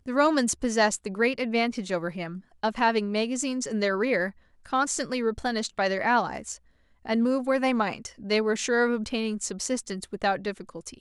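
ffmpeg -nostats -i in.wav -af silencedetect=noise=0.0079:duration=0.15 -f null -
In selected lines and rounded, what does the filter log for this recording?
silence_start: 2.40
silence_end: 2.63 | silence_duration: 0.23
silence_start: 4.31
silence_end: 4.65 | silence_duration: 0.34
silence_start: 6.57
silence_end: 7.05 | silence_duration: 0.49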